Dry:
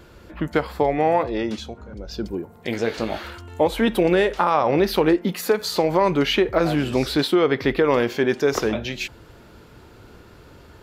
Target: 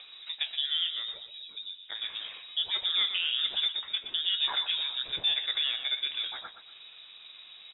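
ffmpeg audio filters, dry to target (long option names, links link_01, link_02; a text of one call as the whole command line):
ffmpeg -i in.wav -af "acompressor=mode=upward:threshold=-28dB:ratio=2.5,atempo=1.4,flanger=delay=8.5:depth=8.6:regen=56:speed=1.2:shape=triangular,aecho=1:1:121|242|363:0.316|0.098|0.0304,lowpass=frequency=3300:width_type=q:width=0.5098,lowpass=frequency=3300:width_type=q:width=0.6013,lowpass=frequency=3300:width_type=q:width=0.9,lowpass=frequency=3300:width_type=q:width=2.563,afreqshift=-3900,volume=-7.5dB" out.wav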